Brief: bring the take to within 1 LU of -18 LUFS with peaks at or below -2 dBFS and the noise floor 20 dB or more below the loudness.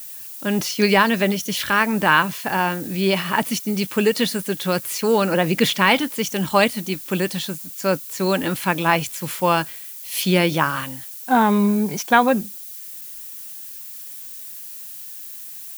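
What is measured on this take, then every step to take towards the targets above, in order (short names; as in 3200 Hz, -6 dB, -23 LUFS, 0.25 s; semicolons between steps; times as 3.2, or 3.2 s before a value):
noise floor -36 dBFS; noise floor target -40 dBFS; loudness -20.0 LUFS; peak -2.5 dBFS; loudness target -18.0 LUFS
-> noise print and reduce 6 dB; gain +2 dB; limiter -2 dBFS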